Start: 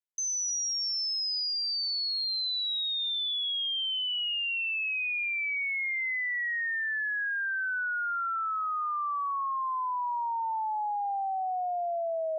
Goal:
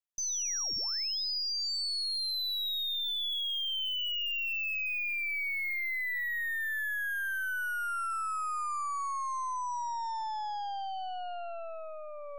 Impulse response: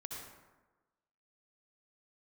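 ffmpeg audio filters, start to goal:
-af "equalizer=f=660:t=o:w=0.48:g=-10.5,afreqshift=-60,aeval=exprs='0.0398*(cos(1*acos(clip(val(0)/0.0398,-1,1)))-cos(1*PI/2))+0.001*(cos(4*acos(clip(val(0)/0.0398,-1,1)))-cos(4*PI/2))+0.00501*(cos(8*acos(clip(val(0)/0.0398,-1,1)))-cos(8*PI/2))':c=same,volume=0.75"

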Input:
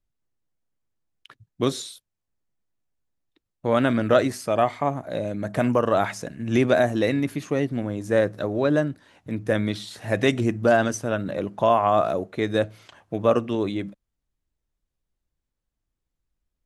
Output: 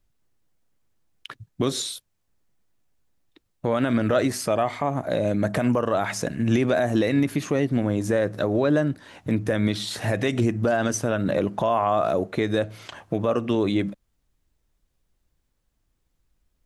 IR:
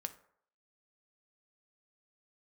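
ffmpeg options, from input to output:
-filter_complex "[0:a]asplit=2[s0][s1];[s1]acompressor=threshold=0.0224:ratio=6,volume=1.26[s2];[s0][s2]amix=inputs=2:normalize=0,alimiter=limit=0.188:level=0:latency=1:release=106,volume=1.33"

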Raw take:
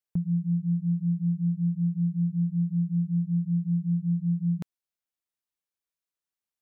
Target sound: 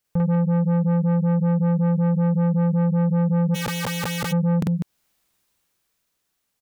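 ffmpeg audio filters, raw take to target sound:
-filter_complex "[0:a]lowshelf=f=280:g=5,aecho=1:1:46.65|198.3:1|0.398,asoftclip=type=tanh:threshold=0.0447,dynaudnorm=f=360:g=9:m=2.51,alimiter=level_in=2:limit=0.0631:level=0:latency=1:release=229,volume=0.501,acontrast=69,asplit=3[s0][s1][s2];[s0]afade=t=out:st=3.54:d=0.02[s3];[s1]aeval=exprs='(mod(22.4*val(0)+1,2)-1)/22.4':c=same,afade=t=in:st=3.54:d=0.02,afade=t=out:st=4.31:d=0.02[s4];[s2]afade=t=in:st=4.31:d=0.02[s5];[s3][s4][s5]amix=inputs=3:normalize=0,volume=1.88"

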